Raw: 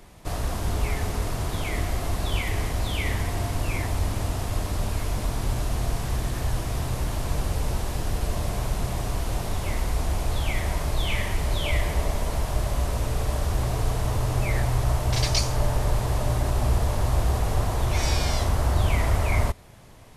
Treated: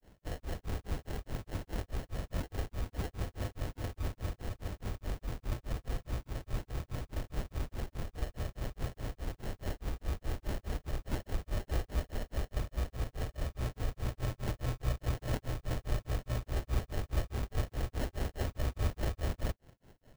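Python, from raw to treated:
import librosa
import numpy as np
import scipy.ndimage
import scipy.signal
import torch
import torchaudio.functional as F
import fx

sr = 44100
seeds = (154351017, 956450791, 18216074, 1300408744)

y = fx.granulator(x, sr, seeds[0], grain_ms=199.0, per_s=4.8, spray_ms=10.0, spread_st=0)
y = fx.sample_hold(y, sr, seeds[1], rate_hz=1200.0, jitter_pct=0)
y = F.gain(torch.from_numpy(y), -7.5).numpy()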